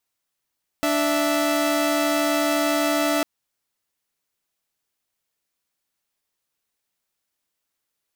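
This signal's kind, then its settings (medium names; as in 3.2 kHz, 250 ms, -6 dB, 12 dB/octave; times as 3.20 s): chord D4/E5 saw, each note -19.5 dBFS 2.40 s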